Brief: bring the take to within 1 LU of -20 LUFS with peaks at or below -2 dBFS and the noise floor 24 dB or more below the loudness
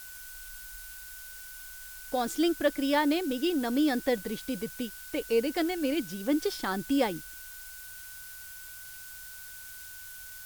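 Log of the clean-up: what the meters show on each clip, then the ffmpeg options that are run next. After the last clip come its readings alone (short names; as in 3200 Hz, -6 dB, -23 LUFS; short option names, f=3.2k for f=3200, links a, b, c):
steady tone 1500 Hz; tone level -49 dBFS; noise floor -45 dBFS; noise floor target -54 dBFS; loudness -29.5 LUFS; peak -13.0 dBFS; loudness target -20.0 LUFS
-> -af "bandreject=f=1.5k:w=30"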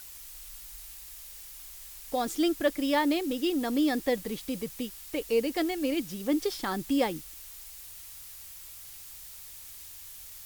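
steady tone none; noise floor -46 dBFS; noise floor target -54 dBFS
-> -af "afftdn=nr=8:nf=-46"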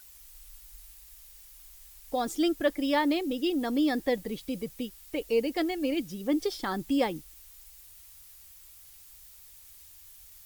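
noise floor -52 dBFS; noise floor target -54 dBFS
-> -af "afftdn=nr=6:nf=-52"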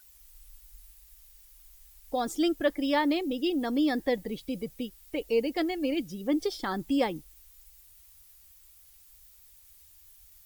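noise floor -57 dBFS; loudness -29.5 LUFS; peak -13.0 dBFS; loudness target -20.0 LUFS
-> -af "volume=9.5dB"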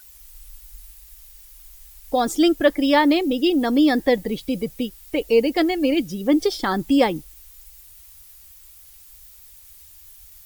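loudness -20.0 LUFS; peak -3.5 dBFS; noise floor -47 dBFS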